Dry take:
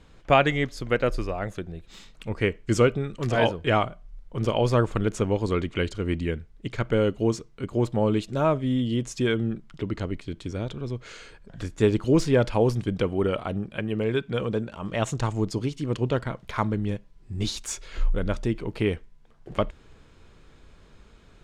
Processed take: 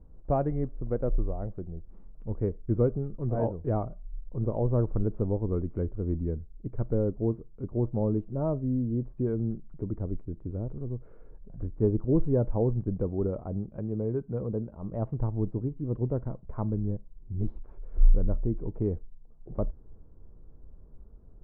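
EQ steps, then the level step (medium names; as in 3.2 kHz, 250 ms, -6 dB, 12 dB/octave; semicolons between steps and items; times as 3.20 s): Bessel low-pass 590 Hz, order 4; bass shelf 66 Hz +11.5 dB; -4.5 dB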